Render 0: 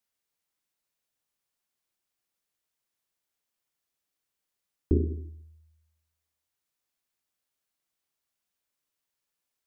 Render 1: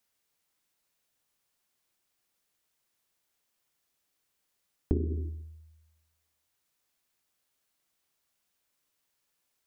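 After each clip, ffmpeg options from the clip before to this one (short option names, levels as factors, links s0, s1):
-af "acompressor=threshold=0.0316:ratio=10,volume=2"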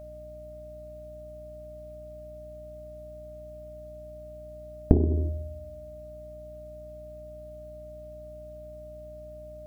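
-af "aeval=exprs='val(0)+0.00355*sin(2*PI*610*n/s)':c=same,aeval=exprs='0.211*(cos(1*acos(clip(val(0)/0.211,-1,1)))-cos(1*PI/2))+0.0841*(cos(2*acos(clip(val(0)/0.211,-1,1)))-cos(2*PI/2))':c=same,aeval=exprs='val(0)+0.002*(sin(2*PI*60*n/s)+sin(2*PI*2*60*n/s)/2+sin(2*PI*3*60*n/s)/3+sin(2*PI*4*60*n/s)/4+sin(2*PI*5*60*n/s)/5)':c=same,volume=2.24"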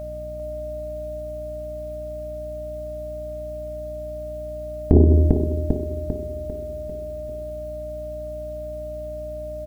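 -filter_complex "[0:a]asplit=2[s0][s1];[s1]aecho=0:1:397|794|1191|1588|1985|2382:0.376|0.188|0.094|0.047|0.0235|0.0117[s2];[s0][s2]amix=inputs=2:normalize=0,alimiter=level_in=3.98:limit=0.891:release=50:level=0:latency=1,volume=0.891"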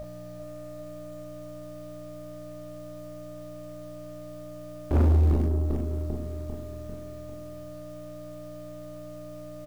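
-filter_complex "[0:a]asplit=2[s0][s1];[s1]acrusher=bits=4:dc=4:mix=0:aa=0.000001,volume=0.282[s2];[s0][s2]amix=inputs=2:normalize=0,asoftclip=type=tanh:threshold=0.158,aecho=1:1:27|40:0.531|0.631,volume=0.501"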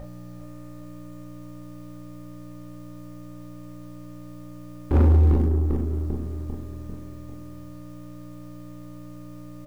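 -filter_complex "[0:a]asplit=2[s0][s1];[s1]adynamicsmooth=sensitivity=7.5:basefreq=830,volume=0.841[s2];[s0][s2]amix=inputs=2:normalize=0,asuperstop=centerf=650:order=12:qfactor=5.8,volume=0.841"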